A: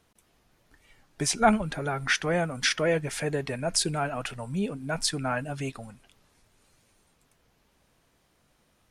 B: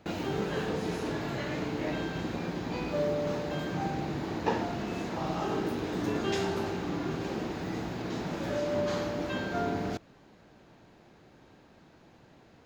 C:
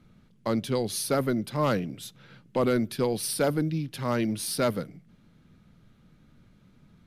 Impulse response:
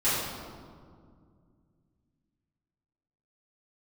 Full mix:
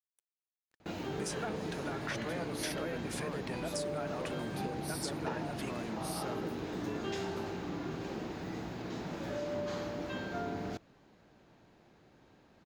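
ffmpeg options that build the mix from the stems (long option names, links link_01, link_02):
-filter_complex "[0:a]highpass=frequency=250:poles=1,acompressor=threshold=-29dB:ratio=6,aeval=exprs='sgn(val(0))*max(abs(val(0))-0.00158,0)':channel_layout=same,volume=-6.5dB[link_01];[1:a]adelay=800,volume=-5.5dB[link_02];[2:a]acompressor=threshold=-31dB:ratio=6,adelay=1650,volume=-8dB[link_03];[link_01][link_02][link_03]amix=inputs=3:normalize=0,acompressor=threshold=-32dB:ratio=6"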